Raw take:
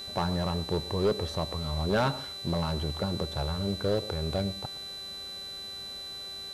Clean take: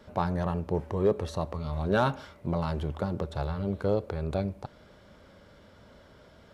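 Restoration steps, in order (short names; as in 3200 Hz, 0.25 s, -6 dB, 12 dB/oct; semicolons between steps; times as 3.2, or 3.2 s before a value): clip repair -20 dBFS; de-hum 390.2 Hz, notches 31; notch 4000 Hz, Q 30; inverse comb 0.118 s -19 dB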